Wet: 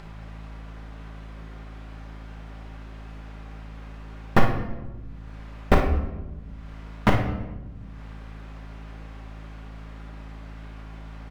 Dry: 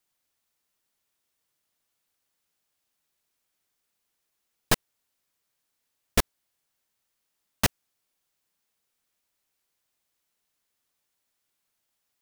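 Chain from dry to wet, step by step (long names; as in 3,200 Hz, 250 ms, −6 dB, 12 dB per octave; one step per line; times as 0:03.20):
low-pass filter 1,400 Hz 12 dB per octave
in parallel at +1 dB: upward compression, threshold −24 dBFS
on the sum: floating-point word with a short mantissa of 4 bits
mains hum 50 Hz, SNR 11 dB
on a send: ambience of single reflections 33 ms −9 dB, 61 ms −10 dB
on the sum: rectangular room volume 690 cubic metres, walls mixed, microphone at 1 metre
speed change +8%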